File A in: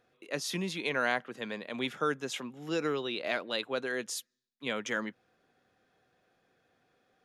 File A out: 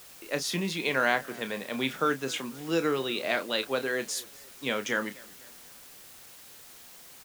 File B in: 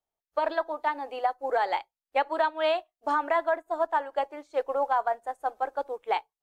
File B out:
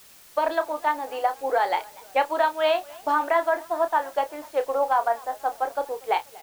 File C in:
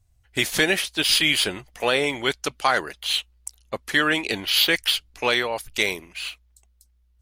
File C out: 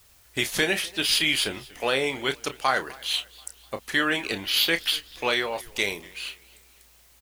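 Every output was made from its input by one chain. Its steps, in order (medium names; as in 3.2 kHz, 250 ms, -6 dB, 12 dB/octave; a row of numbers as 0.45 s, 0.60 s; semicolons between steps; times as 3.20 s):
doubling 30 ms -10 dB; added noise white -54 dBFS; modulated delay 245 ms, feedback 47%, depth 162 cents, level -23 dB; peak normalisation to -9 dBFS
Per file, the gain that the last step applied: +3.5 dB, +3.0 dB, -3.5 dB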